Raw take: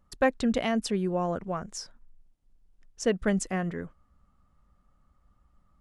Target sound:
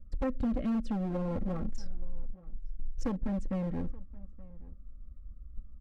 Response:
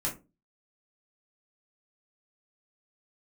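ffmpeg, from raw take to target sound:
-filter_complex "[0:a]asuperstop=centerf=880:order=12:qfactor=2,aemphasis=mode=reproduction:type=riaa,acrossover=split=880[link_01][link_02];[link_01]acontrast=44[link_03];[link_03][link_02]amix=inputs=2:normalize=0,lowshelf=frequency=340:gain=4,agate=range=-6dB:threshold=-30dB:ratio=16:detection=peak,acompressor=threshold=-21dB:ratio=12,asplit=2[link_04][link_05];[link_05]highpass=220[link_06];[1:a]atrim=start_sample=2205[link_07];[link_06][link_07]afir=irnorm=-1:irlink=0,volume=-26dB[link_08];[link_04][link_08]amix=inputs=2:normalize=0,asoftclip=type=hard:threshold=-24.5dB,aecho=1:1:3.7:0.56,asplit=2[link_09][link_10];[link_10]adelay=874.6,volume=-21dB,highshelf=frequency=4000:gain=-19.7[link_11];[link_09][link_11]amix=inputs=2:normalize=0,volume=-5.5dB"

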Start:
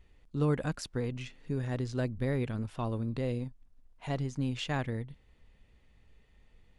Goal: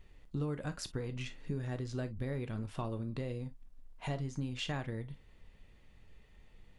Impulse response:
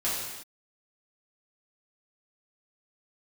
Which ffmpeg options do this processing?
-filter_complex "[0:a]acompressor=threshold=-37dB:ratio=6,asplit=2[link_01][link_02];[1:a]atrim=start_sample=2205,atrim=end_sample=4410,asetrate=70560,aresample=44100[link_03];[link_02][link_03]afir=irnorm=-1:irlink=0,volume=-10.5dB[link_04];[link_01][link_04]amix=inputs=2:normalize=0,volume=1dB"

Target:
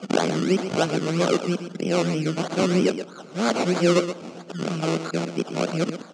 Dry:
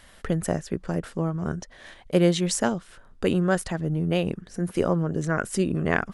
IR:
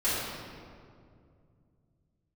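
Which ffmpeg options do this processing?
-filter_complex "[0:a]areverse,equalizer=frequency=1400:width_type=o:width=1:gain=9.5,asplit=2[link_01][link_02];[link_02]alimiter=limit=-16dB:level=0:latency=1,volume=-1dB[link_03];[link_01][link_03]amix=inputs=2:normalize=0,acrusher=samples=22:mix=1:aa=0.000001:lfo=1:lforange=13.2:lforate=3.1,asoftclip=type=tanh:threshold=-7dB,highpass=frequency=190:width=0.5412,highpass=frequency=190:width=1.3066,equalizer=frequency=1000:width_type=q:width=4:gain=-7,equalizer=frequency=1800:width_type=q:width=4:gain=-9,equalizer=frequency=3700:width_type=q:width=4:gain=-4,lowpass=frequency=7100:width=0.5412,lowpass=frequency=7100:width=1.3066,aecho=1:1:123:0.316,asplit=2[link_04][link_05];[1:a]atrim=start_sample=2205[link_06];[link_05][link_06]afir=irnorm=-1:irlink=0,volume=-33dB[link_07];[link_04][link_07]amix=inputs=2:normalize=0"

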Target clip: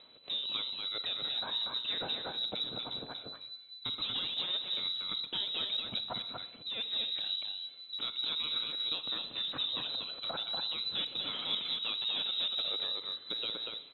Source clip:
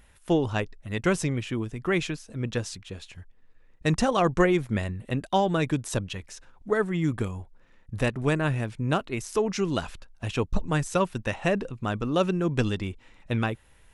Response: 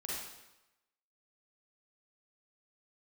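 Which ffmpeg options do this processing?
-filter_complex "[0:a]acompressor=threshold=-27dB:ratio=6,asettb=1/sr,asplit=3[link_01][link_02][link_03];[link_01]atrim=end=10.974[link_04];[link_02]atrim=start=10.97:end=12.68,asetpts=PTS-STARTPTS,afade=type=in:duration=0.004:curve=qsin,afade=type=out:start_time=1.706:duration=0.004:curve=qsin,equalizer=frequency=800:width=0.67:gain=7.5[link_05];[link_03]atrim=start=12.676[link_06];[link_04][link_05]acrossfade=duration=0.004:curve1=hsin:curve2=qsin[link_07];[link_07][link_06]acrossfade=duration=0.004:curve1=qsin:curve2=hsin,asoftclip=type=tanh:threshold=-33dB,aecho=1:1:238:0.668,asplit=2[link_08][link_09];[1:a]atrim=start_sample=2205,afade=type=out:start_time=0.34:duration=0.01,atrim=end_sample=15435[link_10];[link_09][link_10]afir=irnorm=-1:irlink=0,volume=-10.5dB[link_11];[link_08][link_11]amix=inputs=2:normalize=0,lowpass=frequency=3400:width_type=q:width=0.5098,lowpass=frequency=3400:width_type=q:width=0.6013,lowpass=frequency=3400:width_type=q:width=0.9,lowpass=frequency=3400:width_type=q:width=2.563,afreqshift=-4000,aphaser=in_gain=1:out_gain=1:delay=1.7:decay=0.27:speed=0.44:type=triangular,equalizer=frequency=125:width_type=o:width=1:gain=10,equalizer=frequency=250:width_type=o:width=1:gain=10,equalizer=frequency=500:width_type=o:width=1:gain=9,equalizer=frequency=2000:width_type=o:width=1:gain=-9"

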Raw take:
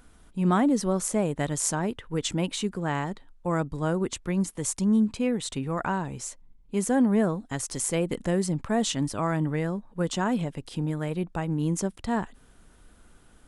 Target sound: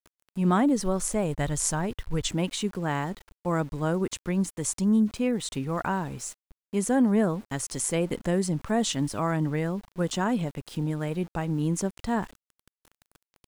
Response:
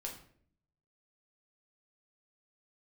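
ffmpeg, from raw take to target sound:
-filter_complex "[0:a]aeval=exprs='val(0)*gte(abs(val(0)),0.00562)':channel_layout=same,asplit=3[link_01][link_02][link_03];[link_01]afade=type=out:start_time=0.73:duration=0.02[link_04];[link_02]asubboost=boost=9.5:cutoff=96,afade=type=in:start_time=0.73:duration=0.02,afade=type=out:start_time=2.27:duration=0.02[link_05];[link_03]afade=type=in:start_time=2.27:duration=0.02[link_06];[link_04][link_05][link_06]amix=inputs=3:normalize=0"

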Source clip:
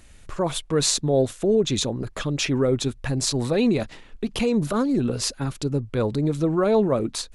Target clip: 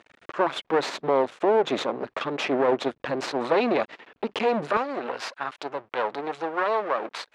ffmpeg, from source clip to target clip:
ffmpeg -i in.wav -af "aeval=exprs='max(val(0),0)':channel_layout=same,alimiter=limit=-15.5dB:level=0:latency=1:release=145,asetnsamples=nb_out_samples=441:pad=0,asendcmd='4.77 highpass f 760',highpass=380,lowpass=2400,volume=9dB" out.wav

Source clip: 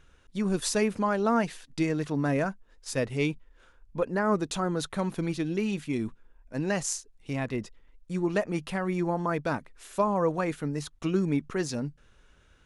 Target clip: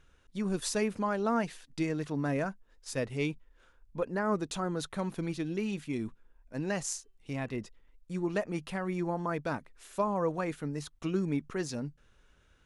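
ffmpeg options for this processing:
ffmpeg -i in.wav -filter_complex "[0:a]asettb=1/sr,asplit=3[link_01][link_02][link_03];[link_01]atrim=end=6.784[link_04];[link_02]atrim=start=6.78:end=7.59,asetpts=PTS-STARTPTS,afade=type=in:duration=0.004:curve=qsin,afade=type=out:start_time=0.806:duration=0.004:curve=qsin,bandreject=frequency=383.6:width_type=h:width=4,bandreject=frequency=767.2:width_type=h:width=4,bandreject=frequency=1150.8:width_type=h:width=4,bandreject=frequency=1534.4:width_type=h:width=4,bandreject=frequency=1918:width_type=h:width=4,bandreject=frequency=2301.6:width_type=h:width=4,bandreject=frequency=2685.2:width_type=h:width=4,bandreject=frequency=3068.8:width_type=h:width=4[link_05];[link_03]atrim=start=7.586[link_06];[link_04][link_05]acrossfade=duration=0.004:curve1=hsin:curve2=qsin[link_07];[link_07][link_06]acrossfade=duration=0.004:curve1=qsin:curve2=hsin,volume=-4.5dB" out.wav

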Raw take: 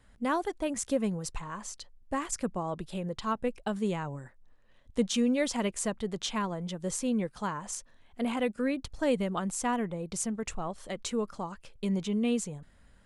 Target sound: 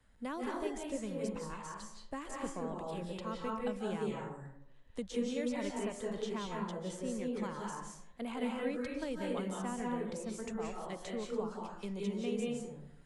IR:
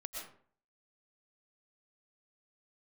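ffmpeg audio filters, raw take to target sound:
-filter_complex "[0:a]acrossover=split=180|370|2100[link_01][link_02][link_03][link_04];[link_01]acompressor=threshold=-46dB:ratio=4[link_05];[link_02]acompressor=threshold=-35dB:ratio=4[link_06];[link_03]acompressor=threshold=-35dB:ratio=4[link_07];[link_04]acompressor=threshold=-45dB:ratio=4[link_08];[link_05][link_06][link_07][link_08]amix=inputs=4:normalize=0[link_09];[1:a]atrim=start_sample=2205,asetrate=30429,aresample=44100[link_10];[link_09][link_10]afir=irnorm=-1:irlink=0,volume=-4dB"

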